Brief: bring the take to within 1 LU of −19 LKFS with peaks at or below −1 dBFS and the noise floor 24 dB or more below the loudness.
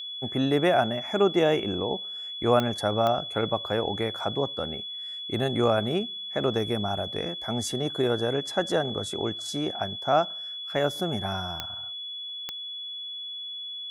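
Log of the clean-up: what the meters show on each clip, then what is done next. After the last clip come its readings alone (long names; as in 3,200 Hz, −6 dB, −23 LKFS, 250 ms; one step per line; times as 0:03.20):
number of clicks 4; interfering tone 3,400 Hz; level of the tone −34 dBFS; integrated loudness −27.5 LKFS; sample peak −8.0 dBFS; target loudness −19.0 LKFS
→ click removal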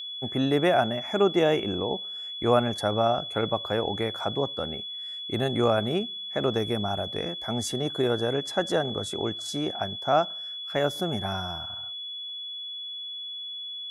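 number of clicks 0; interfering tone 3,400 Hz; level of the tone −34 dBFS
→ notch filter 3,400 Hz, Q 30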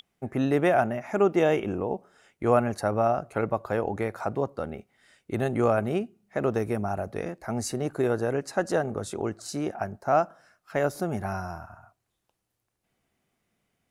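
interfering tone none found; integrated loudness −28.0 LKFS; sample peak −8.0 dBFS; target loudness −19.0 LKFS
→ level +9 dB
brickwall limiter −1 dBFS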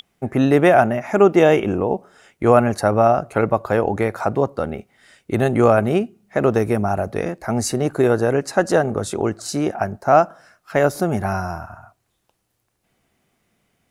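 integrated loudness −19.0 LKFS; sample peak −1.0 dBFS; background noise floor −71 dBFS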